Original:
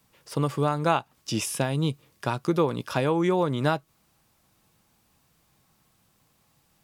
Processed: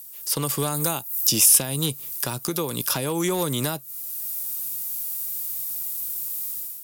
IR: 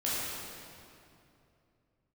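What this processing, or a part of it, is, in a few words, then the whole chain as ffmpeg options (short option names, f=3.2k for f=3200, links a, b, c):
FM broadcast chain: -filter_complex "[0:a]highpass=71,dynaudnorm=f=150:g=5:m=12dB,acrossover=split=460|1200|5600[a][b][c][d];[a]acompressor=threshold=-20dB:ratio=4[e];[b]acompressor=threshold=-28dB:ratio=4[f];[c]acompressor=threshold=-36dB:ratio=4[g];[d]acompressor=threshold=-53dB:ratio=4[h];[e][f][g][h]amix=inputs=4:normalize=0,aemphasis=mode=production:type=75fm,alimiter=limit=-12.5dB:level=0:latency=1:release=284,asoftclip=type=hard:threshold=-15.5dB,lowpass=f=15k:w=0.5412,lowpass=f=15k:w=1.3066,aemphasis=mode=production:type=75fm,asettb=1/sr,asplit=3[i][j][k];[i]atrim=end=0.744[l];[j]atrim=start=0.74:end=1.86,asetpts=PTS-STARTPTS,afade=t=in:d=0.004:c=qsin,afade=t=out:st=1.116:d=0.004:c=qsin,highshelf=f=10k:g=12[m];[k]atrim=start=1.856[n];[l][m]acrossfade=d=0.004:c1=hsin:c2=qsin[o];[o][n]acrossfade=d=0.004:c1=qsin:c2=hsin,volume=-2dB"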